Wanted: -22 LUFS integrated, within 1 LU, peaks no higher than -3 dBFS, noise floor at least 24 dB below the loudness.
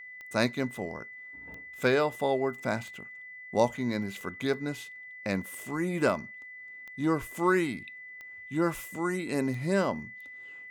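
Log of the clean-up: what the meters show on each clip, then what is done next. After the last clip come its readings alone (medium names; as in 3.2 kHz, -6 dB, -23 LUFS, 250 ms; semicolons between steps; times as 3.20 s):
clicks found 8; steady tone 2 kHz; tone level -43 dBFS; loudness -30.5 LUFS; peak level -11.0 dBFS; loudness target -22.0 LUFS
-> de-click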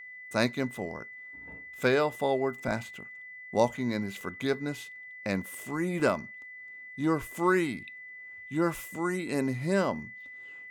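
clicks found 0; steady tone 2 kHz; tone level -43 dBFS
-> band-stop 2 kHz, Q 30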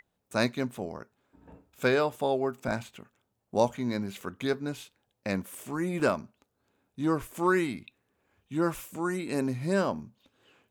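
steady tone not found; loudness -30.5 LUFS; peak level -10.5 dBFS; loudness target -22.0 LUFS
-> trim +8.5 dB; peak limiter -3 dBFS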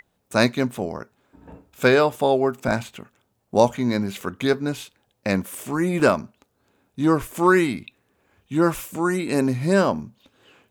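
loudness -22.0 LUFS; peak level -3.0 dBFS; noise floor -71 dBFS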